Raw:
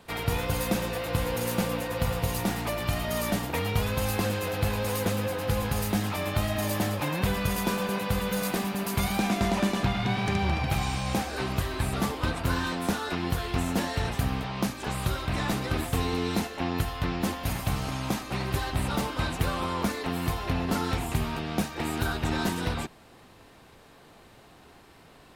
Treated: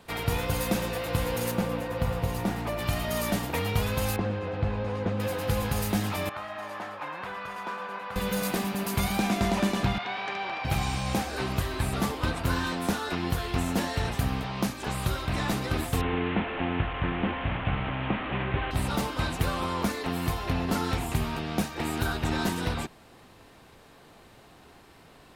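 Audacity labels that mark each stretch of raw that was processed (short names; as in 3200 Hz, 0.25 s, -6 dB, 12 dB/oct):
1.510000	2.790000	high shelf 2700 Hz -9 dB
4.160000	5.200000	tape spacing loss at 10 kHz 32 dB
6.290000	8.160000	band-pass 1200 Hz, Q 1.4
9.980000	10.650000	BPF 580–3700 Hz
16.010000	18.710000	delta modulation 16 kbps, step -27 dBFS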